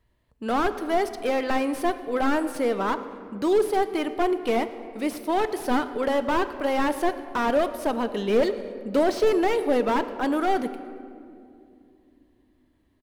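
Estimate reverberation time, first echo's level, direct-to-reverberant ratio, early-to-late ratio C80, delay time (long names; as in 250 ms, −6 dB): 2.5 s, −23.0 dB, 10.5 dB, 12.5 dB, 115 ms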